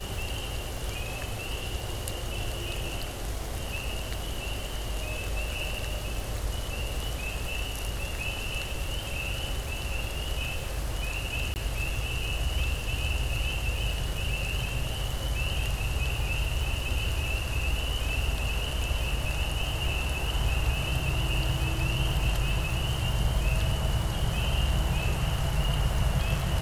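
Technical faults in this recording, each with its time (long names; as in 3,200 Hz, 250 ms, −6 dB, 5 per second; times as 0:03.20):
surface crackle 120 per second −35 dBFS
0:11.54–0:11.56: drop-out 19 ms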